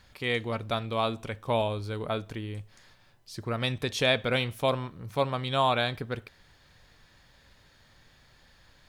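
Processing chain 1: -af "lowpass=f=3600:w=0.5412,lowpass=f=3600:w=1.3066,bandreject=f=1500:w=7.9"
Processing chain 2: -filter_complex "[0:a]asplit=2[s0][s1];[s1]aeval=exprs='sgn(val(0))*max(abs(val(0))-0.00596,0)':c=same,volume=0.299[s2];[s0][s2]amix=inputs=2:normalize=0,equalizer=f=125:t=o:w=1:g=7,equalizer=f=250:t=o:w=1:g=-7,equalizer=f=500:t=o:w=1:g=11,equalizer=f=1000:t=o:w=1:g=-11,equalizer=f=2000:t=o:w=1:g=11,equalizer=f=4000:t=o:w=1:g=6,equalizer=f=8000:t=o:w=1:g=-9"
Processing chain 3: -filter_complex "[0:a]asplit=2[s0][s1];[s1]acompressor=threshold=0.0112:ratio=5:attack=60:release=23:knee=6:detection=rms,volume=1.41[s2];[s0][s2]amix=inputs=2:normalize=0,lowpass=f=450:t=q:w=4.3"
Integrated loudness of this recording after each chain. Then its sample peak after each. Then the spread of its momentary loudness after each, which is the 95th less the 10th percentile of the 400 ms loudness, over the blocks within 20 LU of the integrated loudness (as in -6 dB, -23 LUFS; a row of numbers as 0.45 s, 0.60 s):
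-30.0 LUFS, -22.0 LUFS, -22.5 LUFS; -12.5 dBFS, -3.5 dBFS, -6.0 dBFS; 12 LU, 14 LU, 8 LU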